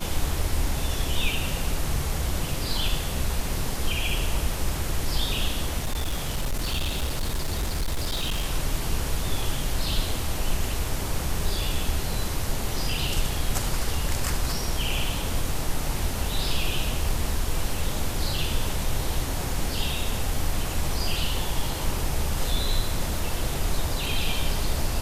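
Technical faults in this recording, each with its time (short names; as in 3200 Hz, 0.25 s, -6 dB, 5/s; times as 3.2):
5.82–8.45 clipped -22 dBFS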